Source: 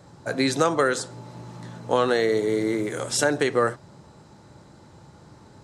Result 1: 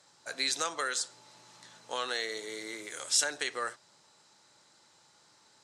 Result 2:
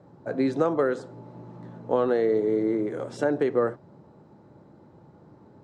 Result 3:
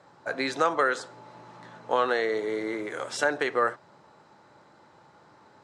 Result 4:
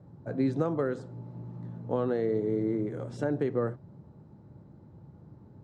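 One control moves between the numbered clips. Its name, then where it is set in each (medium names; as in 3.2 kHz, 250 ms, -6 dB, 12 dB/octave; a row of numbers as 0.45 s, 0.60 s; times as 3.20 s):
band-pass filter, frequency: 5.8 kHz, 330 Hz, 1.3 kHz, 130 Hz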